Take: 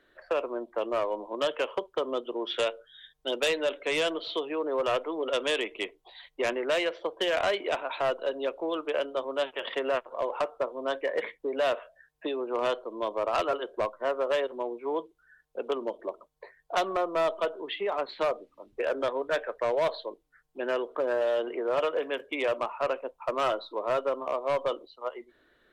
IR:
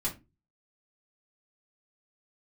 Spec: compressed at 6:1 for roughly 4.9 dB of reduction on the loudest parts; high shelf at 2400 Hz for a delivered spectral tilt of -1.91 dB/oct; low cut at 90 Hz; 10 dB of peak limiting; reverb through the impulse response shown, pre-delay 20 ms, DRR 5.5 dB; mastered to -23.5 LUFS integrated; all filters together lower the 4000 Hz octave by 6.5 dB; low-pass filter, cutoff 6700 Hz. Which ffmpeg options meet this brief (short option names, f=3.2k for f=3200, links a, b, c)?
-filter_complex "[0:a]highpass=90,lowpass=6.7k,highshelf=f=2.4k:g=-5,equalizer=f=4k:t=o:g=-4.5,acompressor=threshold=-29dB:ratio=6,alimiter=level_in=7.5dB:limit=-24dB:level=0:latency=1,volume=-7.5dB,asplit=2[a][b];[1:a]atrim=start_sample=2205,adelay=20[c];[b][c]afir=irnorm=-1:irlink=0,volume=-9dB[d];[a][d]amix=inputs=2:normalize=0,volume=15.5dB"